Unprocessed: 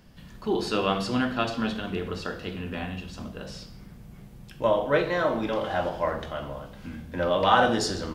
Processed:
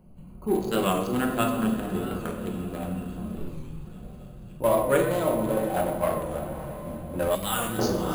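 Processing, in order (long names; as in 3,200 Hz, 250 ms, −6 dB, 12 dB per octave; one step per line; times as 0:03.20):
adaptive Wiener filter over 25 samples
0:05.04–0:05.77: parametric band 1,600 Hz −14 dB 0.52 octaves
feedback delay with all-pass diffusion 643 ms, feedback 44%, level −12 dB
0:03.36–0:03.87: frequency shifter −190 Hz
delay with a high-pass on its return 280 ms, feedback 85%, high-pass 4,800 Hz, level −14 dB
rectangular room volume 600 cubic metres, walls mixed, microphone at 1 metre
bad sample-rate conversion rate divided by 4×, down filtered, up hold
0:07.35–0:07.79: parametric band 700 Hz −14.5 dB 2.7 octaves
wow of a warped record 45 rpm, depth 100 cents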